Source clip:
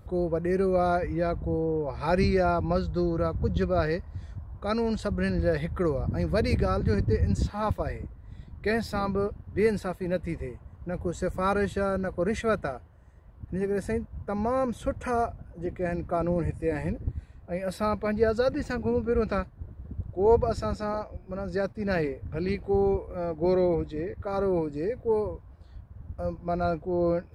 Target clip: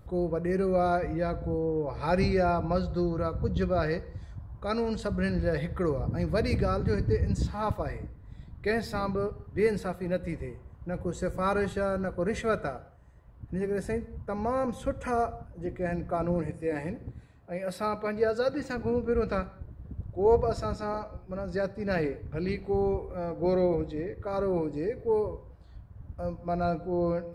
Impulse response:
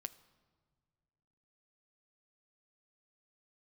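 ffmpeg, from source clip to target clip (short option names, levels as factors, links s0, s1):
-filter_complex "[0:a]asettb=1/sr,asplit=3[s0][s1][s2];[s0]atrim=end=16.414[s3];[s1]atrim=start=16.41:end=18.77,asetpts=PTS-STARTPTS,afade=t=in:d=0.004:c=qsin,afade=t=out:st=2.356:d=0.004:c=qsin,highpass=f=190:p=1[s4];[s2]atrim=start=18.766[s5];[s3][s4]acrossfade=d=0.004:c1=hsin:c2=qsin[s6];[s6][s5]acrossfade=d=0.004:c1=qsin:c2=hsin[s7];[1:a]atrim=start_sample=2205,afade=t=out:st=0.27:d=0.01,atrim=end_sample=12348[s8];[s7][s8]afir=irnorm=-1:irlink=0,volume=1.26"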